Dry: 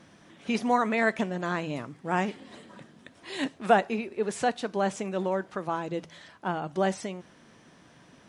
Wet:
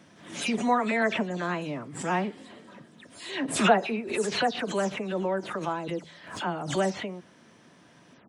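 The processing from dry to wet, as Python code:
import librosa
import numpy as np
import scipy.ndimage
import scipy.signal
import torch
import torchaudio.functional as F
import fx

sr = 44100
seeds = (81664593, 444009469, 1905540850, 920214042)

y = fx.spec_delay(x, sr, highs='early', ms=144)
y = scipy.signal.sosfilt(scipy.signal.butter(2, 96.0, 'highpass', fs=sr, output='sos'), y)
y = fx.pre_swell(y, sr, db_per_s=89.0)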